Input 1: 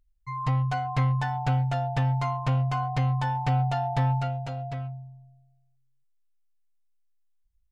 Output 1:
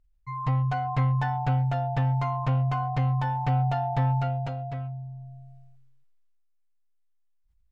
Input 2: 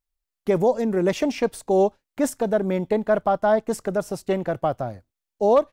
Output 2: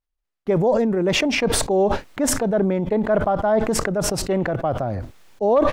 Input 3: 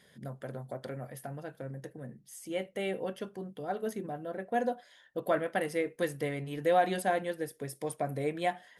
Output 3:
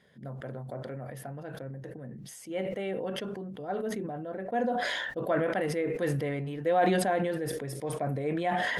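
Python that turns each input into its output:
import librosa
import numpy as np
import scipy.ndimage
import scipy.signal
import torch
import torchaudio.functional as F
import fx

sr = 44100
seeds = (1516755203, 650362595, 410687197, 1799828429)

y = fx.lowpass(x, sr, hz=2200.0, slope=6)
y = fx.sustainer(y, sr, db_per_s=21.0)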